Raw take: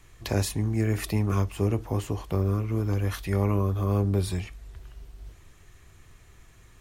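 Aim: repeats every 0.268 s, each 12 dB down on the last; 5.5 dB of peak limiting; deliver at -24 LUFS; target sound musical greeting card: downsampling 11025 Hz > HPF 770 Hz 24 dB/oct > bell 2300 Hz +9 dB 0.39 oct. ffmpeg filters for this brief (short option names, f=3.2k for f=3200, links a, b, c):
-af "alimiter=limit=-17dB:level=0:latency=1,aecho=1:1:268|536|804:0.251|0.0628|0.0157,aresample=11025,aresample=44100,highpass=f=770:w=0.5412,highpass=f=770:w=1.3066,equalizer=f=2.3k:t=o:w=0.39:g=9,volume=15dB"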